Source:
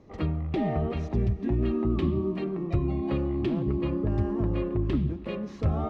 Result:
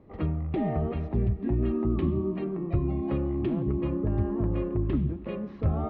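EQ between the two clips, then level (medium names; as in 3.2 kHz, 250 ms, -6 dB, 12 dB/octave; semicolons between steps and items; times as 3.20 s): distance through air 360 m; 0.0 dB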